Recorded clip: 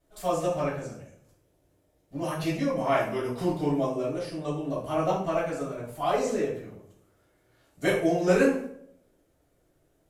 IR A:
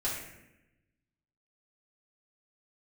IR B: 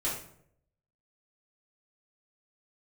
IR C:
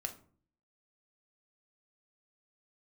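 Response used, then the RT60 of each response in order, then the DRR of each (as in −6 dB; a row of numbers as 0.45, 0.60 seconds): B; 0.90, 0.70, 0.50 seconds; −8.0, −9.5, 4.5 decibels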